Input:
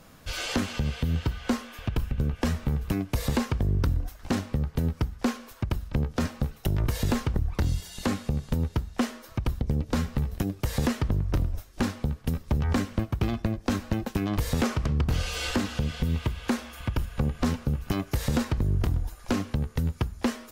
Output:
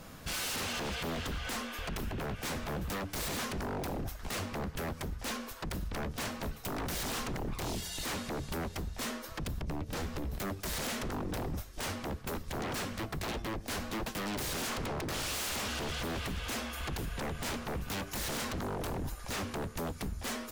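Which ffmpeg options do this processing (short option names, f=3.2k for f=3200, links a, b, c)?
-filter_complex "[0:a]asettb=1/sr,asplit=3[a][b][c];[a]atrim=end=9.474[d];[b]atrim=start=9.47:end=10.34,asetpts=PTS-STARTPTS,afade=t=in:d=0.004:c=qsin,afade=t=out:st=0.866:d=0.004:c=qsin,acompressor=threshold=-28dB:ratio=6[e];[c]atrim=start=10.336[f];[d][e]acrossfade=d=0.004:c1=hsin:c2=qsin[g];[g][f]acrossfade=d=0.004:c1=qsin:c2=hsin,aeval=exprs='0.02*(abs(mod(val(0)/0.02+3,4)-2)-1)':c=same,volume=3dB"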